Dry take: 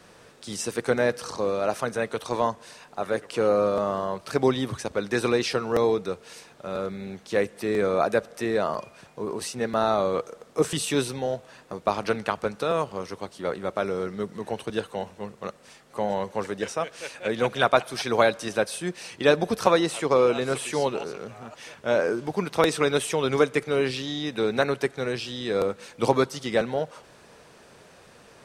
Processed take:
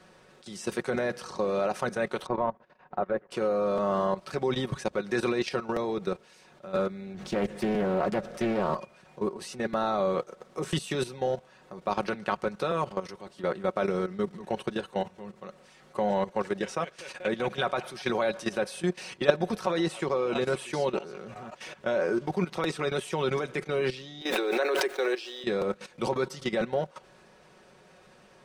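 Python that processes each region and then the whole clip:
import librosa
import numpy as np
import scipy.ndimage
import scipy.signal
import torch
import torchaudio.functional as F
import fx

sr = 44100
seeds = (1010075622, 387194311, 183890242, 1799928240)

y = fx.chain(x, sr, fx.lowpass(hz=1600.0, slope=12),
    fx.transient(attack_db=6, sustain_db=-9), at=(2.26, 3.31))
y = fx.chain(y, sr, fx.law_mismatch(coded='mu'),
    fx.low_shelf(hz=250.0, db=8.0),
    fx.doppler_dist(depth_ms=0.48), at=(7.14, 8.74))
y = fx.chain(y, sr, fx.steep_highpass(hz=310.0, slope=48),
    fx.quant_dither(seeds[0], bits=10, dither='triangular'),
    fx.pre_swell(db_per_s=41.0), at=(24.21, 25.44))
y = fx.high_shelf(y, sr, hz=6700.0, db=-8.5)
y = fx.level_steps(y, sr, step_db=15)
y = y + 0.51 * np.pad(y, (int(5.4 * sr / 1000.0), 0))[:len(y)]
y = F.gain(torch.from_numpy(y), 2.5).numpy()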